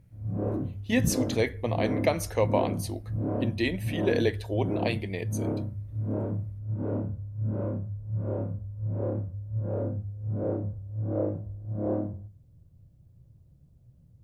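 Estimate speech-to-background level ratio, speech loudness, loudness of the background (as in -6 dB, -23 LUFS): 2.5 dB, -30.0 LUFS, -32.5 LUFS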